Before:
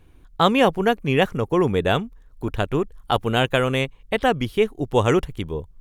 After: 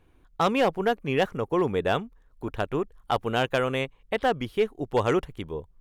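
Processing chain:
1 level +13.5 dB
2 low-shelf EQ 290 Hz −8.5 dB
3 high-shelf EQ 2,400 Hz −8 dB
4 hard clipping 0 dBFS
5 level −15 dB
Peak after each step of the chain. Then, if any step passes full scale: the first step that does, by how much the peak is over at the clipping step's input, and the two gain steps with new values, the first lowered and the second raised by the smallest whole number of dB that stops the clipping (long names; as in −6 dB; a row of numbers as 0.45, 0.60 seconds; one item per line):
+10.5, +10.0, +8.0, 0.0, −15.0 dBFS
step 1, 8.0 dB
step 1 +5.5 dB, step 5 −7 dB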